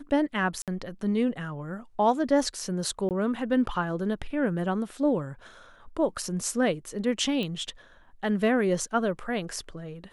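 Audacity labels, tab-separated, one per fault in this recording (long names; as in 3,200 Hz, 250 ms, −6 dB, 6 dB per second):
0.620000	0.680000	drop-out 57 ms
3.090000	3.110000	drop-out 18 ms
7.430000	7.430000	click −20 dBFS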